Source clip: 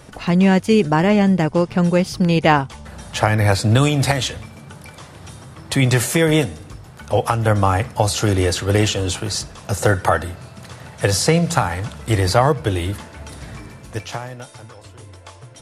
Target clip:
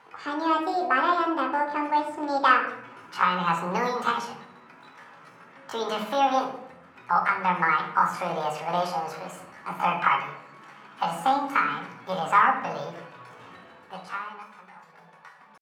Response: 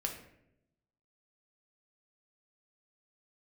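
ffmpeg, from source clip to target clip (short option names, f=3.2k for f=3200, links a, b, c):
-filter_complex "[0:a]asetrate=74167,aresample=44100,atempo=0.594604,bandpass=f=1.2k:t=q:w=1.5:csg=0[a];[1:a]atrim=start_sample=2205[b];[a][b]afir=irnorm=-1:irlink=0,volume=-2.5dB"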